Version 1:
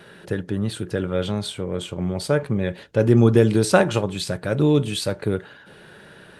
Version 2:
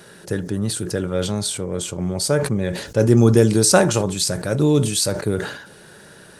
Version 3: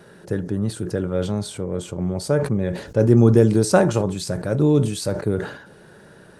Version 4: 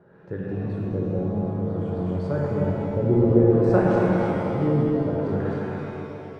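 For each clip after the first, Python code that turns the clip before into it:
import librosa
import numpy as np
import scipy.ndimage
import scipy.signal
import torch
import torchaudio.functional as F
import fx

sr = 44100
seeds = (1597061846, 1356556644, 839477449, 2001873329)

y1 = fx.high_shelf_res(x, sr, hz=4300.0, db=9.5, q=1.5)
y1 = fx.sustainer(y1, sr, db_per_s=74.0)
y1 = F.gain(torch.from_numpy(y1), 1.0).numpy()
y2 = fx.high_shelf(y1, sr, hz=2100.0, db=-12.0)
y3 = fx.reverse_delay_fb(y2, sr, ms=132, feedback_pct=76, wet_db=-4.5)
y3 = fx.filter_lfo_lowpass(y3, sr, shape='sine', hz=0.58, low_hz=530.0, high_hz=2000.0, q=0.84)
y3 = fx.rev_shimmer(y3, sr, seeds[0], rt60_s=2.3, semitones=7, shimmer_db=-8, drr_db=-0.5)
y3 = F.gain(torch.from_numpy(y3), -8.5).numpy()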